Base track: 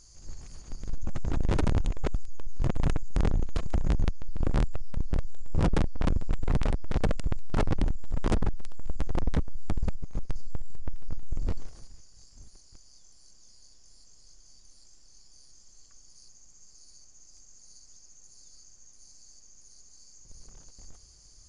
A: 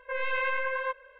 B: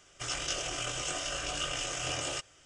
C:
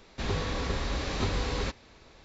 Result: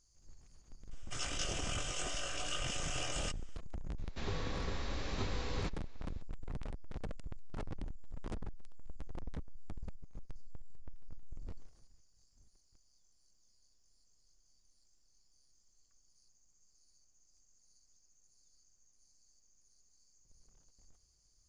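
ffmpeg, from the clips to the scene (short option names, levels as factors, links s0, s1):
-filter_complex "[0:a]volume=0.15[s0];[2:a]atrim=end=2.65,asetpts=PTS-STARTPTS,volume=0.531,afade=t=in:d=0.004:c=hsin,afade=t=out:st=2.646:d=0.004:c=hsin,adelay=910[s1];[3:a]atrim=end=2.24,asetpts=PTS-STARTPTS,volume=0.355,afade=t=in:d=0.004:c=hsin,afade=t=out:st=2.236:d=0.004:c=hsin,adelay=3980[s2];[s0][s1][s2]amix=inputs=3:normalize=0"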